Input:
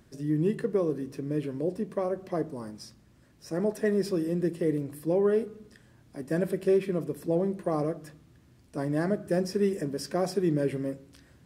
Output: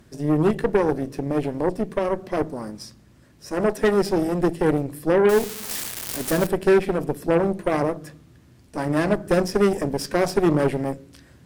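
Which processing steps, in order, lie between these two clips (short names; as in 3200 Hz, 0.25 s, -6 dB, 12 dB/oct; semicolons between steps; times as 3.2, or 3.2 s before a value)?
5.29–6.47 switching spikes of -25.5 dBFS; added harmonics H 6 -15 dB, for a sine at -15 dBFS; gain +6.5 dB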